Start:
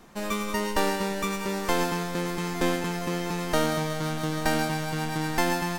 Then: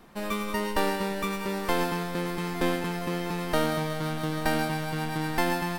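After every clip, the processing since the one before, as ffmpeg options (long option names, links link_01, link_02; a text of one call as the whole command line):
ffmpeg -i in.wav -af "equalizer=frequency=6600:width=2.2:gain=-8,volume=-1dB" out.wav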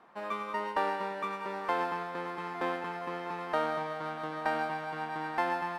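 ffmpeg -i in.wav -af "bandpass=frequency=1000:width_type=q:width=1.1:csg=0" out.wav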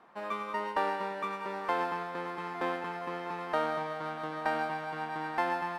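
ffmpeg -i in.wav -af anull out.wav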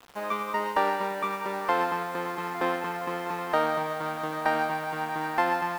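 ffmpeg -i in.wav -af "acrusher=bits=8:mix=0:aa=0.000001,volume=5.5dB" out.wav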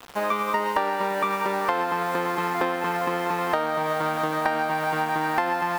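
ffmpeg -i in.wav -af "acompressor=threshold=-29dB:ratio=6,volume=8.5dB" out.wav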